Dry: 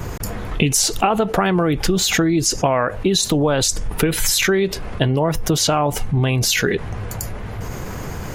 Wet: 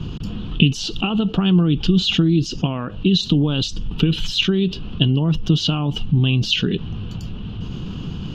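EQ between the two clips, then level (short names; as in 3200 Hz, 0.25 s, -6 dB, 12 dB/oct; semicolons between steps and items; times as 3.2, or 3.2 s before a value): EQ curve 110 Hz 0 dB, 170 Hz +8 dB, 300 Hz +2 dB, 590 Hz -14 dB, 1300 Hz -8 dB, 2100 Hz -19 dB, 2900 Hz +10 dB, 5900 Hz -12 dB, 9400 Hz -30 dB; -1.5 dB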